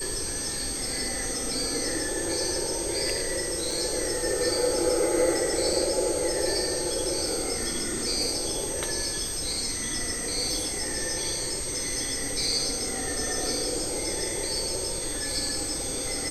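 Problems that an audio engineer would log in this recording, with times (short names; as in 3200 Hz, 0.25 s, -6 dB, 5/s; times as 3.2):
tone 8300 Hz -32 dBFS
3.71 gap 3.7 ms
5.73 gap 3 ms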